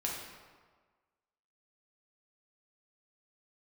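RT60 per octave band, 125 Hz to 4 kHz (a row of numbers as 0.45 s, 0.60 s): 1.4 s, 1.4 s, 1.5 s, 1.5 s, 1.2 s, 0.95 s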